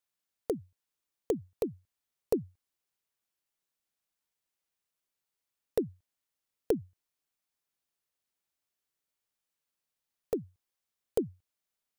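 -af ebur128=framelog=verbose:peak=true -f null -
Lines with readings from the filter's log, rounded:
Integrated loudness:
  I:         -36.2 LUFS
  Threshold: -47.0 LUFS
Loudness range:
  LRA:         7.5 LU
  Threshold: -61.9 LUFS
  LRA low:   -46.7 LUFS
  LRA high:  -39.2 LUFS
True peak:
  Peak:      -14.1 dBFS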